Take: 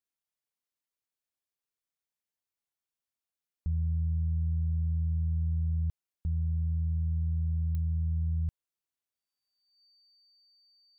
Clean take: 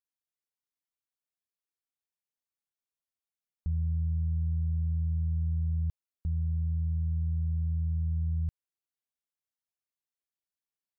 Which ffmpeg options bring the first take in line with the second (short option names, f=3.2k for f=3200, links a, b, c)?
-af "adeclick=t=4,bandreject=f=4.6k:w=30"